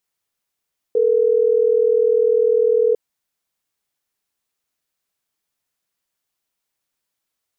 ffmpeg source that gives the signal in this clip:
ffmpeg -f lavfi -i "aevalsrc='0.168*(sin(2*PI*440*t)+sin(2*PI*480*t))*clip(min(mod(t,6),2-mod(t,6))/0.005,0,1)':duration=3.12:sample_rate=44100" out.wav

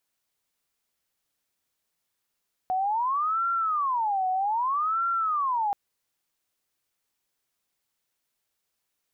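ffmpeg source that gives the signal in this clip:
ffmpeg -f lavfi -i "aevalsrc='0.0708*sin(2*PI*(1056.5*t-313.5/(2*PI*0.63)*sin(2*PI*0.63*t)))':duration=3.03:sample_rate=44100" out.wav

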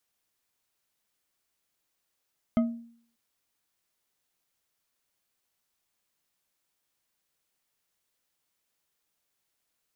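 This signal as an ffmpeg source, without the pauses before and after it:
ffmpeg -f lavfi -i "aevalsrc='0.126*pow(10,-3*t/0.57)*sin(2*PI*233*t)+0.0501*pow(10,-3*t/0.28)*sin(2*PI*642.4*t)+0.02*pow(10,-3*t/0.175)*sin(2*PI*1259.1*t)+0.00794*pow(10,-3*t/0.123)*sin(2*PI*2081.4*t)+0.00316*pow(10,-3*t/0.093)*sin(2*PI*3108.2*t)':duration=0.59:sample_rate=44100" out.wav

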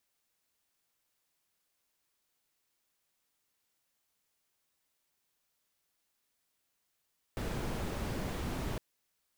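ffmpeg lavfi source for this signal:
ffmpeg -f lavfi -i "anoisesrc=color=brown:amplitude=0.0741:duration=1.41:sample_rate=44100:seed=1" out.wav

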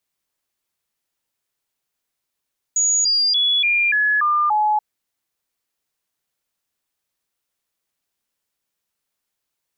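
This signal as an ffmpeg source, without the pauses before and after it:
ffmpeg -f lavfi -i "aevalsrc='0.188*clip(min(mod(t,0.29),0.29-mod(t,0.29))/0.005,0,1)*sin(2*PI*6790*pow(2,-floor(t/0.29)/2)*mod(t,0.29))':duration=2.03:sample_rate=44100" out.wav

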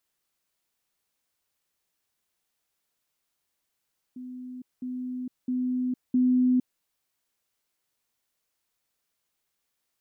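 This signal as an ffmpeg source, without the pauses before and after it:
ffmpeg -f lavfi -i "aevalsrc='pow(10,(-36.5+6*floor(t/0.66))/20)*sin(2*PI*252*t)*clip(min(mod(t,0.66),0.46-mod(t,0.66))/0.005,0,1)':duration=2.64:sample_rate=44100" out.wav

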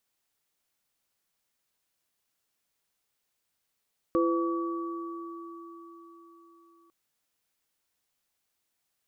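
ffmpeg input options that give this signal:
ffmpeg -f lavfi -i "aevalsrc='0.0708*pow(10,-3*t/4.29)*sin(2*PI*337*t)+0.0531*pow(10,-3*t/1.6)*sin(2*PI*506*t)+0.0355*pow(10,-3*t/4.91)*sin(2*PI*1140*t)':duration=2.75:sample_rate=44100" out.wav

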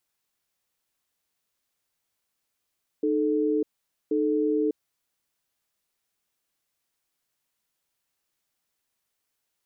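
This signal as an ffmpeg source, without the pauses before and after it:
ffmpeg -f lavfi -i "aevalsrc='0.0631*(sin(2*PI*306*t)+sin(2*PI*436*t))*clip(min(mod(t,1.08),0.6-mod(t,1.08))/0.005,0,1)':duration=1.78:sample_rate=44100" out.wav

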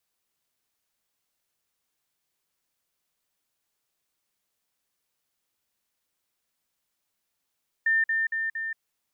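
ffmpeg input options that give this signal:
ffmpeg -f lavfi -i "aevalsrc='pow(10,(-19.5-3*floor(t/0.23))/20)*sin(2*PI*1800*t)*clip(min(mod(t,0.23),0.18-mod(t,0.23))/0.005,0,1)':duration=0.92:sample_rate=44100" out.wav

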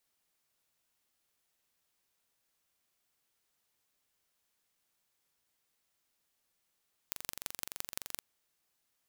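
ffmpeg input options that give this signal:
ffmpeg -f lavfi -i "aevalsrc='0.398*eq(mod(n,1885),0)*(0.5+0.5*eq(mod(n,7540),0))':duration=1.09:sample_rate=44100" out.wav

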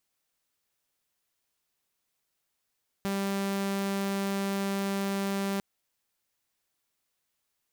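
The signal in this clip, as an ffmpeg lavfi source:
ffmpeg -f lavfi -i "aevalsrc='0.0531*(2*mod(197*t,1)-1)':duration=2.55:sample_rate=44100" out.wav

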